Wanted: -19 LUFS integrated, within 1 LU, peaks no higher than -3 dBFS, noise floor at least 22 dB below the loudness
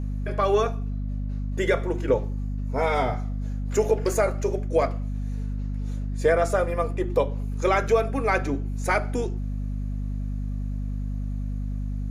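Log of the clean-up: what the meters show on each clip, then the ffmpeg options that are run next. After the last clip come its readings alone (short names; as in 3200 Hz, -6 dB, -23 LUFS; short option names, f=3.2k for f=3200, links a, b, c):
hum 50 Hz; harmonics up to 250 Hz; hum level -26 dBFS; loudness -26.5 LUFS; peak -9.5 dBFS; loudness target -19.0 LUFS
-> -af "bandreject=f=50:t=h:w=6,bandreject=f=100:t=h:w=6,bandreject=f=150:t=h:w=6,bandreject=f=200:t=h:w=6,bandreject=f=250:t=h:w=6"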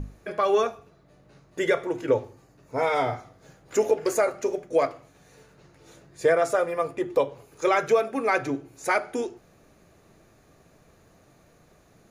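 hum none; loudness -25.5 LUFS; peak -10.5 dBFS; loudness target -19.0 LUFS
-> -af "volume=6.5dB"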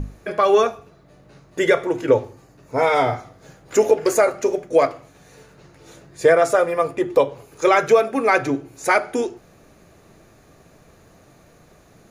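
loudness -19.0 LUFS; peak -4.0 dBFS; noise floor -52 dBFS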